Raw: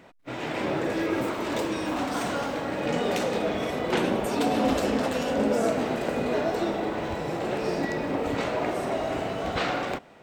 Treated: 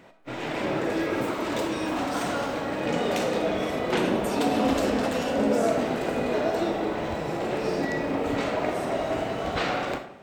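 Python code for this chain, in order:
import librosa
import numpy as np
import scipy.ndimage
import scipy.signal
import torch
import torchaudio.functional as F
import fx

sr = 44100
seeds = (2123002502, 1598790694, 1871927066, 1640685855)

y = fx.rev_freeverb(x, sr, rt60_s=0.67, hf_ratio=0.6, predelay_ms=15, drr_db=7.5)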